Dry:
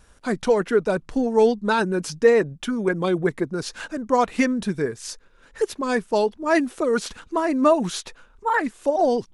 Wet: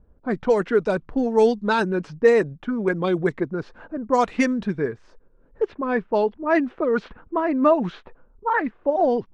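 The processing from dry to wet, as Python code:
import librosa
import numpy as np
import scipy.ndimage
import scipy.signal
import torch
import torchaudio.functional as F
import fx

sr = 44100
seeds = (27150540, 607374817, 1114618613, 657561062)

y = fx.env_lowpass(x, sr, base_hz=450.0, full_db=-14.5)
y = fx.lowpass(y, sr, hz=fx.steps((0.0, 9200.0), (5.62, 2500.0)), slope=12)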